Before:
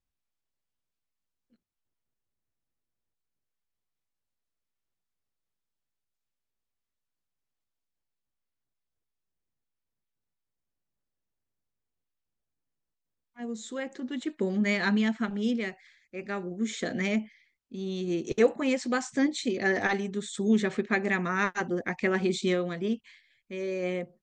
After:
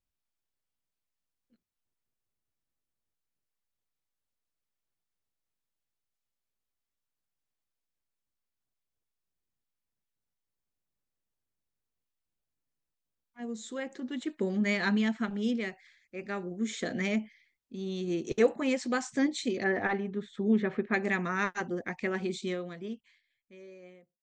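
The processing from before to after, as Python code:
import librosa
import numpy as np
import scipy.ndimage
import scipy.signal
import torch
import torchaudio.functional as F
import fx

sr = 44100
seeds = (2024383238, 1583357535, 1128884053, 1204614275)

y = fx.fade_out_tail(x, sr, length_s=3.15)
y = fx.lowpass(y, sr, hz=2100.0, slope=12, at=(19.64, 20.94))
y = y * 10.0 ** (-2.0 / 20.0)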